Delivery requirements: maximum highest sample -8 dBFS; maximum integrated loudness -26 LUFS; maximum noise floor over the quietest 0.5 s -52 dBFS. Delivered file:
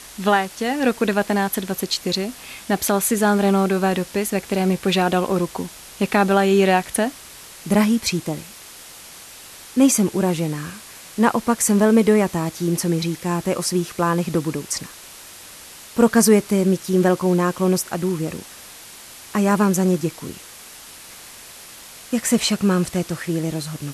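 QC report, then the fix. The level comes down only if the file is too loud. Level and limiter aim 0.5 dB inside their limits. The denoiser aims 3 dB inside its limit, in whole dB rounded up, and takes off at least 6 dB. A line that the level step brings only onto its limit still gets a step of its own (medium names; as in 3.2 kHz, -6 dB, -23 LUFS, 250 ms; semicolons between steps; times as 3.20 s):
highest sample -3.5 dBFS: fail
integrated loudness -20.0 LUFS: fail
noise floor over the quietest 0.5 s -41 dBFS: fail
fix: noise reduction 8 dB, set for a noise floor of -41 dBFS; trim -6.5 dB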